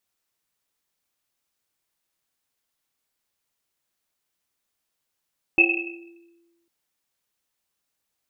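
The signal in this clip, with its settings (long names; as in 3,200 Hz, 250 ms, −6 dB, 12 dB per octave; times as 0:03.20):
drum after Risset, pitch 340 Hz, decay 1.34 s, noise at 2,600 Hz, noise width 130 Hz, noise 70%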